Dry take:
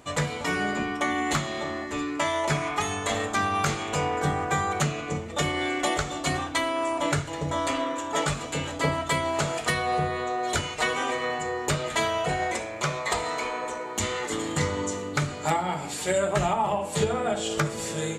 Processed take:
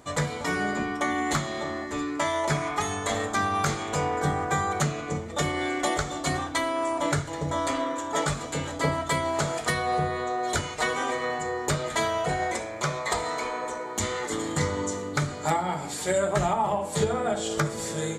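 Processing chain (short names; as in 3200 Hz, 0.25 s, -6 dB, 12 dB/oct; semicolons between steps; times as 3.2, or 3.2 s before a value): bell 2700 Hz -8 dB 0.36 oct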